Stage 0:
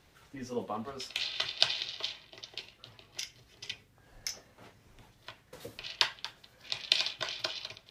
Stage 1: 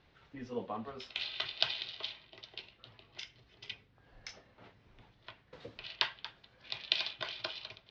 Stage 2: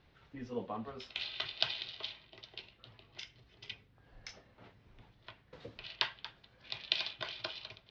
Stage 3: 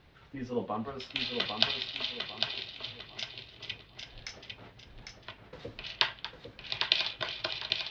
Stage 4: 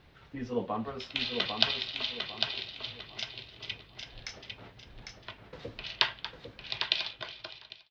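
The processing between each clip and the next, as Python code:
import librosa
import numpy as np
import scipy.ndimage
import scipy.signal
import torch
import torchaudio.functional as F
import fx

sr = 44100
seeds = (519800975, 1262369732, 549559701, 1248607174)

y1 = scipy.signal.sosfilt(scipy.signal.butter(4, 4300.0, 'lowpass', fs=sr, output='sos'), x)
y1 = y1 * 10.0 ** (-3.0 / 20.0)
y2 = fx.low_shelf(y1, sr, hz=230.0, db=4.0)
y2 = y2 * 10.0 ** (-1.5 / 20.0)
y3 = fx.echo_feedback(y2, sr, ms=801, feedback_pct=32, wet_db=-5)
y3 = y3 * 10.0 ** (6.0 / 20.0)
y4 = fx.fade_out_tail(y3, sr, length_s=1.41)
y4 = y4 * 10.0 ** (1.0 / 20.0)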